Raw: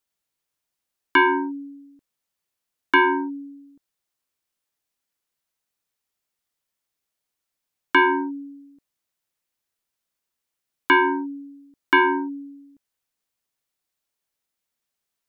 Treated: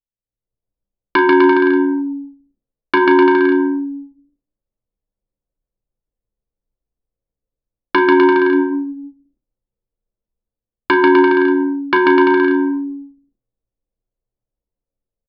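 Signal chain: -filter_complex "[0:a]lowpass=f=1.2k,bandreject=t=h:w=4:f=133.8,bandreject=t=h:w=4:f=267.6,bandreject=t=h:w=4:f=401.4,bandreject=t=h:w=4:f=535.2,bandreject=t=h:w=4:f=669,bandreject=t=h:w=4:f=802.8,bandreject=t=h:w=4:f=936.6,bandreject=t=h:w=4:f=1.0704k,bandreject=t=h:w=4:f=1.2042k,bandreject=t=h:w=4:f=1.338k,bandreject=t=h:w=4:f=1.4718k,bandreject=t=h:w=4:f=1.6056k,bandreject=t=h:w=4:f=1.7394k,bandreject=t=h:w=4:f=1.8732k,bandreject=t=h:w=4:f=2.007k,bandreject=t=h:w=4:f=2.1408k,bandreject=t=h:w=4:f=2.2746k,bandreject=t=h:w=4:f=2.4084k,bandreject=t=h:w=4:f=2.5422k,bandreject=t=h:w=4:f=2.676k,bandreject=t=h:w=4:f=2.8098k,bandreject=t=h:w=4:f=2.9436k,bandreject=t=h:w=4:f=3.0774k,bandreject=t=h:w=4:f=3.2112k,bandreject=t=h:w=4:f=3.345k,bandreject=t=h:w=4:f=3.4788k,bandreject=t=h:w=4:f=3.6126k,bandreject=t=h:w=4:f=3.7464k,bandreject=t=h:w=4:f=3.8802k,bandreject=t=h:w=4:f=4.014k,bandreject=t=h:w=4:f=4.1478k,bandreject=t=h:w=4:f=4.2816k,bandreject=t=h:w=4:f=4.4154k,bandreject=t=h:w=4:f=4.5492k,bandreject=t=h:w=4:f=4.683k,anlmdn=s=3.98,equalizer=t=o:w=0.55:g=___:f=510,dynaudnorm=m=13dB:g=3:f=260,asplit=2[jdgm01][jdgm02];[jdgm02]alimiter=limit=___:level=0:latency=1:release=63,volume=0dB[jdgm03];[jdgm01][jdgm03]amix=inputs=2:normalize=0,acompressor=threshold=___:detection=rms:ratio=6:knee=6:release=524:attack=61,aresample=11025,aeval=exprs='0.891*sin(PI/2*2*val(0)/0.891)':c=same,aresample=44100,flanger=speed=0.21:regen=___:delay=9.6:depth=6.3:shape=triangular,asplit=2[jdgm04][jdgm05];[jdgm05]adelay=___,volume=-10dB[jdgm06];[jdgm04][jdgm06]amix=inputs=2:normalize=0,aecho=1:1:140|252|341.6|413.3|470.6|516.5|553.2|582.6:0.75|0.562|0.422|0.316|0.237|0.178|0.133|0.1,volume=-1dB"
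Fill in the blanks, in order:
9.5, -12.5dB, -15dB, -80, 35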